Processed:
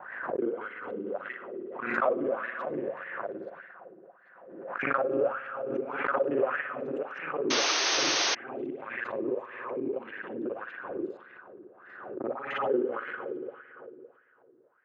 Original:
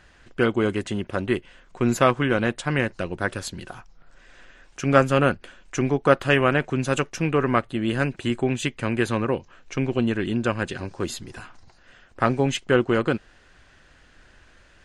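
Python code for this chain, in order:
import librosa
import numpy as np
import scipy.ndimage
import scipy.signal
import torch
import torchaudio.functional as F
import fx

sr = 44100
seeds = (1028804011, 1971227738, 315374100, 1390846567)

y = fx.local_reverse(x, sr, ms=38.0)
y = scipy.signal.sosfilt(scipy.signal.butter(2, 140.0, 'highpass', fs=sr, output='sos'), y)
y = fx.high_shelf(y, sr, hz=5000.0, db=-10.5)
y = fx.echo_wet_highpass(y, sr, ms=794, feedback_pct=43, hz=3200.0, wet_db=-11.5)
y = fx.rev_spring(y, sr, rt60_s=2.8, pass_ms=(56,), chirp_ms=70, drr_db=2.0)
y = fx.wah_lfo(y, sr, hz=1.7, low_hz=330.0, high_hz=1900.0, q=4.9)
y = fx.peak_eq(y, sr, hz=540.0, db=4.0, octaves=0.22)
y = fx.env_lowpass(y, sr, base_hz=1100.0, full_db=-26.0)
y = fx.spec_paint(y, sr, seeds[0], shape='noise', start_s=7.5, length_s=0.85, low_hz=290.0, high_hz=6500.0, level_db=-24.0)
y = fx.pre_swell(y, sr, db_per_s=49.0)
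y = y * librosa.db_to_amplitude(-3.0)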